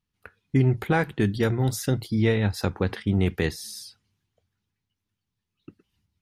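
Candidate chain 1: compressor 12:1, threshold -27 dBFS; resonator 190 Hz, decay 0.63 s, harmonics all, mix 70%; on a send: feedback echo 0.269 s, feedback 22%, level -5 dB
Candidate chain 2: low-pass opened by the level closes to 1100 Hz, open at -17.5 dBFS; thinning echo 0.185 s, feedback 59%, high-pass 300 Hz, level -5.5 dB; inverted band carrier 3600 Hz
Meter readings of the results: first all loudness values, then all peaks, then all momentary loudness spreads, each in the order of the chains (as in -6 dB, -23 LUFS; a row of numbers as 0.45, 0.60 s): -41.5, -20.0 LUFS; -23.5, -6.5 dBFS; 13, 7 LU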